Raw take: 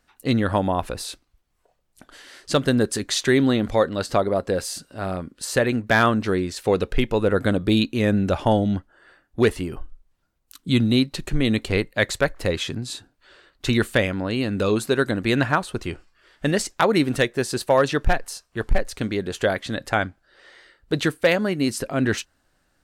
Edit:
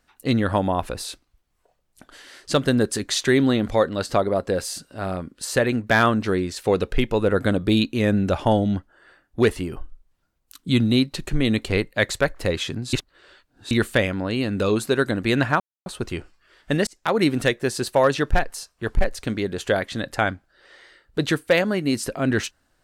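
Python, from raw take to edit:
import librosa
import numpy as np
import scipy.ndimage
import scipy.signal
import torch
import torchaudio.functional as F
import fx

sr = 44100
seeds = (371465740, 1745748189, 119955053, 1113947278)

y = fx.edit(x, sr, fx.reverse_span(start_s=12.93, length_s=0.78),
    fx.insert_silence(at_s=15.6, length_s=0.26),
    fx.fade_in_span(start_s=16.61, length_s=0.34), tone=tone)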